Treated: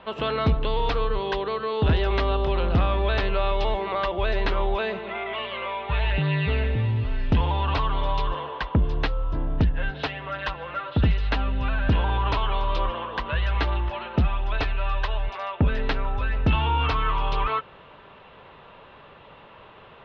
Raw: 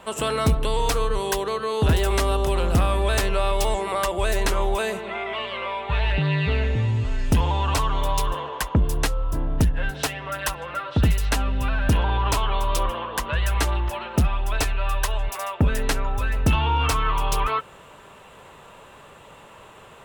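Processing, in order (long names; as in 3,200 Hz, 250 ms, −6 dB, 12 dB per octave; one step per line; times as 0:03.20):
Butterworth low-pass 4,100 Hz 36 dB per octave
level −1.5 dB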